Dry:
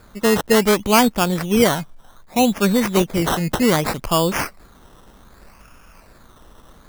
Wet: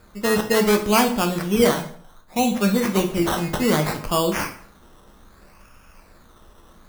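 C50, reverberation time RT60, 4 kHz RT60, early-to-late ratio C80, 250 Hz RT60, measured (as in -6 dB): 10.0 dB, 0.55 s, 0.50 s, 14.0 dB, 0.60 s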